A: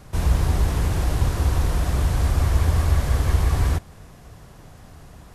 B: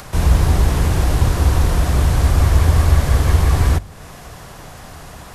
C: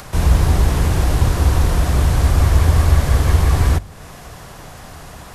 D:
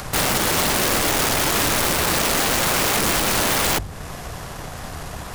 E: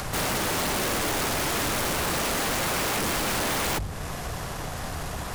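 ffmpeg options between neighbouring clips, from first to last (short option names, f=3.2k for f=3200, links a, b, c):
-filter_complex "[0:a]bandreject=f=50:t=h:w=6,bandreject=f=100:t=h:w=6,acrossover=split=530[a][b];[b]acompressor=mode=upward:threshold=-38dB:ratio=2.5[c];[a][c]amix=inputs=2:normalize=0,volume=6.5dB"
-af anull
-af "aeval=exprs='(mod(8.41*val(0)+1,2)-1)/8.41':c=same,aeval=exprs='0.126*(cos(1*acos(clip(val(0)/0.126,-1,1)))-cos(1*PI/2))+0.00447*(cos(8*acos(clip(val(0)/0.126,-1,1)))-cos(8*PI/2))':c=same,volume=3.5dB"
-af "asoftclip=type=hard:threshold=-25.5dB"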